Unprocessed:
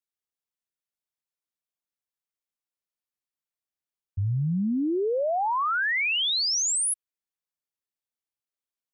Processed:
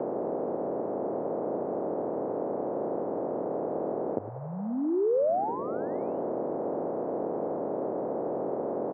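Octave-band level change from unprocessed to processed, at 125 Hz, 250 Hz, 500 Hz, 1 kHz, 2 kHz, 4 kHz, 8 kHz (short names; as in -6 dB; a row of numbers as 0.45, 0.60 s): -10.5 dB, +1.0 dB, +6.5 dB, -2.0 dB, under -25 dB, under -40 dB, under -40 dB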